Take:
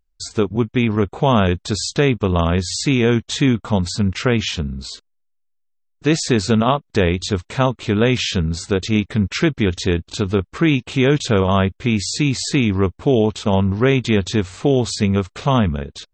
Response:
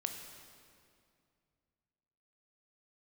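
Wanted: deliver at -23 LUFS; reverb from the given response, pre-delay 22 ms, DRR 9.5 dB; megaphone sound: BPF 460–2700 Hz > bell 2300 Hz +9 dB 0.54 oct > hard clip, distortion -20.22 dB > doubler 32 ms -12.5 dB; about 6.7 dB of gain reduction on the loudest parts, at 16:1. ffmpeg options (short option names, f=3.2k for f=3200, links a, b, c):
-filter_complex "[0:a]acompressor=threshold=-17dB:ratio=16,asplit=2[a][b];[1:a]atrim=start_sample=2205,adelay=22[c];[b][c]afir=irnorm=-1:irlink=0,volume=-10dB[d];[a][d]amix=inputs=2:normalize=0,highpass=460,lowpass=2.7k,equalizer=f=2.3k:t=o:w=0.54:g=9,asoftclip=type=hard:threshold=-15.5dB,asplit=2[e][f];[f]adelay=32,volume=-12.5dB[g];[e][g]amix=inputs=2:normalize=0,volume=4.5dB"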